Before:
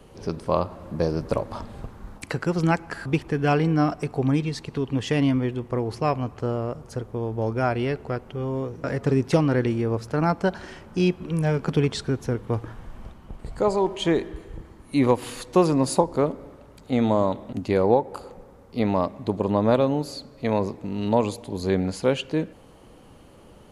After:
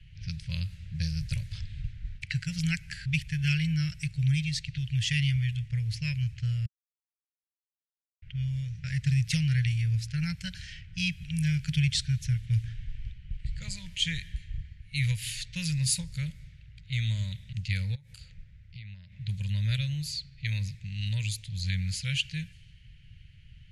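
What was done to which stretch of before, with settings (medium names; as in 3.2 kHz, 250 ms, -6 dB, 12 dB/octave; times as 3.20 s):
6.66–8.22 s: mute
17.95–19.12 s: compression 8:1, threshold -33 dBFS
whole clip: level-controlled noise filter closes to 2.3 kHz, open at -21 dBFS; inverse Chebyshev band-stop 240–1200 Hz, stop band 40 dB; trim +3.5 dB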